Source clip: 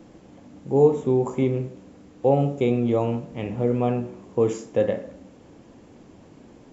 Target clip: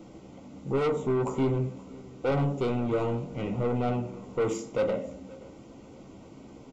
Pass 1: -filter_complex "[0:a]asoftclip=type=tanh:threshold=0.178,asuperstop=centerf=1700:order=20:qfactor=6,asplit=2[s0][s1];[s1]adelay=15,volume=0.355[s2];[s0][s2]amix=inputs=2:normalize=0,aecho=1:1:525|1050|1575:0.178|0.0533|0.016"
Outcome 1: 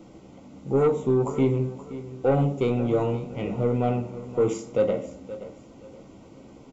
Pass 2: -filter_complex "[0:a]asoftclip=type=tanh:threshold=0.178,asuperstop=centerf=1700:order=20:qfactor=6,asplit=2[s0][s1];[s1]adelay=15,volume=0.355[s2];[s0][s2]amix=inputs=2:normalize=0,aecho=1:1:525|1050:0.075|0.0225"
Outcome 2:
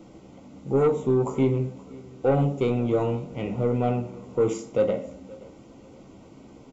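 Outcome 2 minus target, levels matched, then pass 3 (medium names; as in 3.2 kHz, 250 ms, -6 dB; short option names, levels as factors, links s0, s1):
saturation: distortion -7 dB
-filter_complex "[0:a]asoftclip=type=tanh:threshold=0.0668,asuperstop=centerf=1700:order=20:qfactor=6,asplit=2[s0][s1];[s1]adelay=15,volume=0.355[s2];[s0][s2]amix=inputs=2:normalize=0,aecho=1:1:525|1050:0.075|0.0225"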